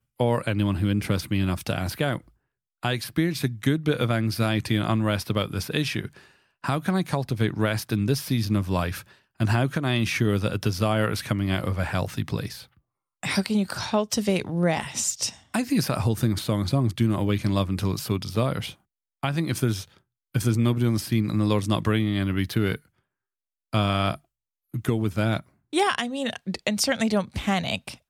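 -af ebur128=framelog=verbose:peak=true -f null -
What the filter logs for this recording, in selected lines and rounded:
Integrated loudness:
  I:         -25.6 LUFS
  Threshold: -35.8 LUFS
Loudness range:
  LRA:         2.4 LU
  Threshold: -46.1 LUFS
  LRA low:   -27.3 LUFS
  LRA high:  -24.9 LUFS
True peak:
  Peak:       -9.8 dBFS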